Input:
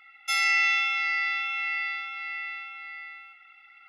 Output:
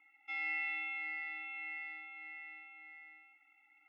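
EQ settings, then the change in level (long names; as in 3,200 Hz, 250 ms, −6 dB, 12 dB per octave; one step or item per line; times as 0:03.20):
formant filter u
high-frequency loss of the air 300 metres
+5.0 dB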